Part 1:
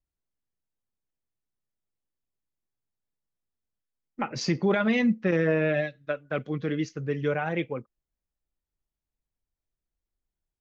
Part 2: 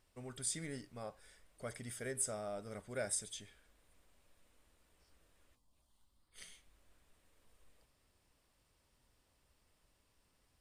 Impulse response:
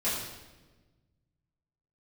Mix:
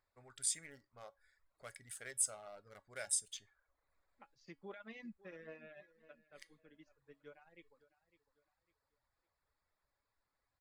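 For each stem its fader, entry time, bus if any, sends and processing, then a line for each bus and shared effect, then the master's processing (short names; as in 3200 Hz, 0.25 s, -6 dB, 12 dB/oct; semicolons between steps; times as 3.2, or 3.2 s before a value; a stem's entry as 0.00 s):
-13.5 dB, 0.00 s, no send, echo send -16 dB, upward expander 2.5:1, over -32 dBFS
+3.0 dB, 0.00 s, no send, no echo send, Wiener smoothing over 15 samples; EQ curve 120 Hz 0 dB, 240 Hz -9 dB, 2400 Hz +5 dB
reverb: off
echo: feedback echo 0.553 s, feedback 35%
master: reverb removal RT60 0.64 s; low shelf 300 Hz -11.5 dB; resonator 280 Hz, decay 0.21 s, harmonics all, mix 50%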